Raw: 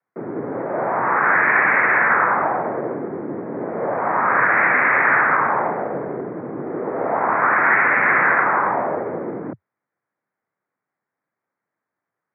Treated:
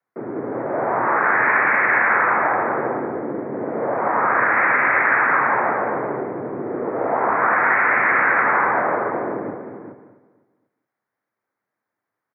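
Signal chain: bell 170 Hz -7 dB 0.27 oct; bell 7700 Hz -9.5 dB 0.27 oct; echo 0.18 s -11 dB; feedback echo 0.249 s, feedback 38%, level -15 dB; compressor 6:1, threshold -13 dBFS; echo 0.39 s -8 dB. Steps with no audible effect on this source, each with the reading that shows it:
bell 7700 Hz: input band ends at 2700 Hz

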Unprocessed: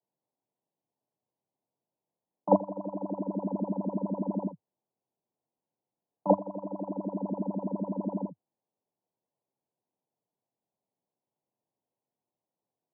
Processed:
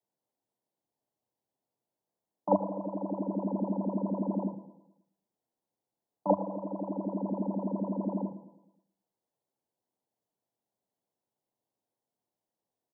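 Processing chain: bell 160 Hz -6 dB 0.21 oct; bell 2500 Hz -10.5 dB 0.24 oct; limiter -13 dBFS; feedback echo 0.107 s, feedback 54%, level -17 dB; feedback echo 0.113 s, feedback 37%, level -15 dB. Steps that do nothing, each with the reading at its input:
bell 2500 Hz: input band ends at 1100 Hz

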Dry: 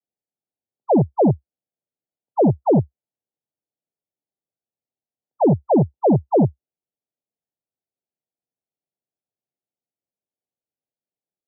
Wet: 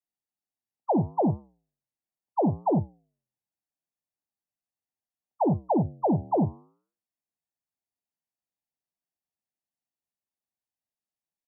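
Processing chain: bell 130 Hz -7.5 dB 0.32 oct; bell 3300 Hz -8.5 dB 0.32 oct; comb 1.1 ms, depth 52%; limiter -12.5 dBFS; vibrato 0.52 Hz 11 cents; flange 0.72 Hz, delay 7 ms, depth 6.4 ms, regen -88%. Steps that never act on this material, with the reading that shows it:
bell 3300 Hz: input band ends at 1000 Hz

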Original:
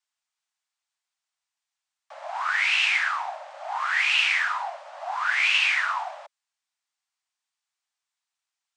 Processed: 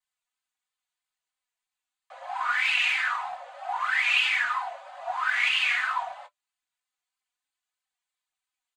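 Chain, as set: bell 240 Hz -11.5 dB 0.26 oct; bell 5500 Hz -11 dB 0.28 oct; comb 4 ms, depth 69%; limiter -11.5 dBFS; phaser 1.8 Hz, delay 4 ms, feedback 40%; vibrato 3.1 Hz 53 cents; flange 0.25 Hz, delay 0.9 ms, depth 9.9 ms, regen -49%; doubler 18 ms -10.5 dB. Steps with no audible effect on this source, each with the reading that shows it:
bell 240 Hz: input band starts at 510 Hz

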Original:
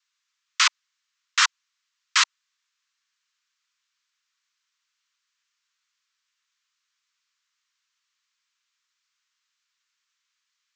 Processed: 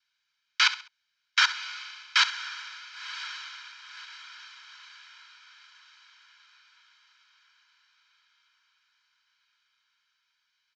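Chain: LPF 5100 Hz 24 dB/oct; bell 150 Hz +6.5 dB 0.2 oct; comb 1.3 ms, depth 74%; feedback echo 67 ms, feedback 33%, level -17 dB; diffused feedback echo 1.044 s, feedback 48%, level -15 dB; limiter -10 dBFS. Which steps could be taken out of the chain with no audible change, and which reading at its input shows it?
bell 150 Hz: input band starts at 760 Hz

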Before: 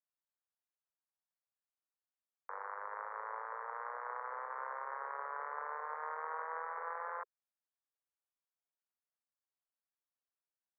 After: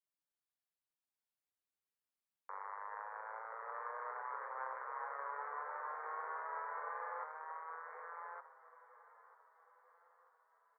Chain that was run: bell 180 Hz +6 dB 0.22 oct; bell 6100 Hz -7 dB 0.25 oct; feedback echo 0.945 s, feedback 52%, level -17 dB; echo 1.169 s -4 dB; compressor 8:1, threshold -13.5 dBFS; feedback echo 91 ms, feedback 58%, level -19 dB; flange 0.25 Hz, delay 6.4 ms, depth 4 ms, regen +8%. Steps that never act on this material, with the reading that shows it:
bell 180 Hz: input band starts at 380 Hz; bell 6100 Hz: input band ends at 2300 Hz; compressor, threshold -13.5 dBFS: input peak -27.0 dBFS

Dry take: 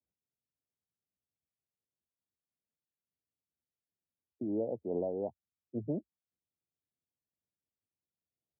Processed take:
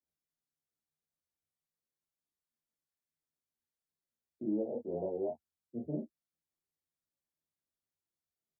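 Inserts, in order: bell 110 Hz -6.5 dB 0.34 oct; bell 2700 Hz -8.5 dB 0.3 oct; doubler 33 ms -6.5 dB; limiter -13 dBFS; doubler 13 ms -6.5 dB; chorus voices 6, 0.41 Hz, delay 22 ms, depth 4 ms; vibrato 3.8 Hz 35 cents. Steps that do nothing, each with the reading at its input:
bell 2700 Hz: input band ends at 910 Hz; limiter -13 dBFS: input peak -21.0 dBFS

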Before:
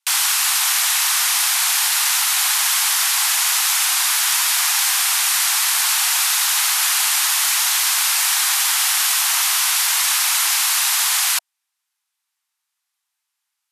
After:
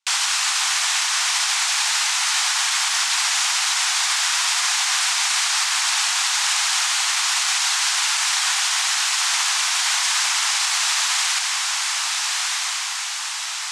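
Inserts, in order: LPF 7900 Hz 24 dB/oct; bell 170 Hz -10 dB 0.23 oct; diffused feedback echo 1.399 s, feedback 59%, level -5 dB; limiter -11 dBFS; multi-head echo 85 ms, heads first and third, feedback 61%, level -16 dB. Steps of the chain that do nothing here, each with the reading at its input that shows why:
bell 170 Hz: input band starts at 570 Hz

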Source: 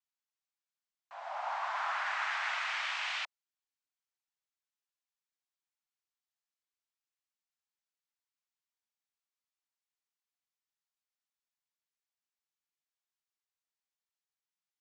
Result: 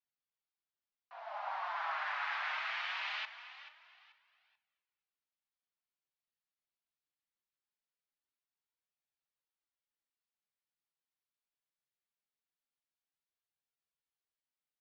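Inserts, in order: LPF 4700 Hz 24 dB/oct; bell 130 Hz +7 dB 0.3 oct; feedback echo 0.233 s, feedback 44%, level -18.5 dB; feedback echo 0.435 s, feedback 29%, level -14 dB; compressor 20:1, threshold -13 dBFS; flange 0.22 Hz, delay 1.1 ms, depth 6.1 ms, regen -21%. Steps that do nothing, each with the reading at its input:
bell 130 Hz: input band starts at 510 Hz; compressor, threshold -13 dBFS: input peak -22.5 dBFS

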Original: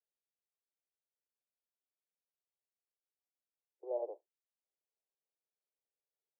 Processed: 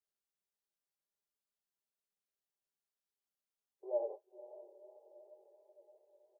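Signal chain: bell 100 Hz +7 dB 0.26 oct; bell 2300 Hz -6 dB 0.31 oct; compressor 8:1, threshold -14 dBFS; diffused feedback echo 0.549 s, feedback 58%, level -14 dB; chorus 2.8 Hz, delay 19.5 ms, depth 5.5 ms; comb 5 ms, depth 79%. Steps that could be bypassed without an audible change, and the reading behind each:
bell 100 Hz: input band starts at 320 Hz; bell 2300 Hz: input band ends at 960 Hz; compressor, threshold -14 dBFS: input peak -27.0 dBFS

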